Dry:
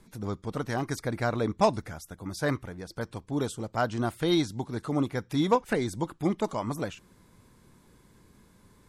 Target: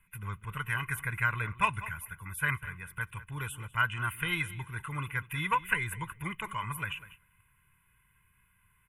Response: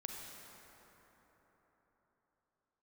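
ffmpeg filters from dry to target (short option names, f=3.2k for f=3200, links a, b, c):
-filter_complex "[0:a]aecho=1:1:2:0.68,asplit=2[a][b];[b]adelay=197,lowpass=f=4.1k:p=1,volume=-15.5dB,asplit=2[c][d];[d]adelay=197,lowpass=f=4.1k:p=1,volume=0.18[e];[a][c][e]amix=inputs=3:normalize=0,agate=range=-9dB:threshold=-51dB:ratio=16:detection=peak,firequalizer=gain_entry='entry(150,0);entry(300,-14);entry(560,-21);entry(1100,5);entry(2700,15);entry(4500,-28);entry(10000,10)':delay=0.05:min_phase=1,volume=-4dB"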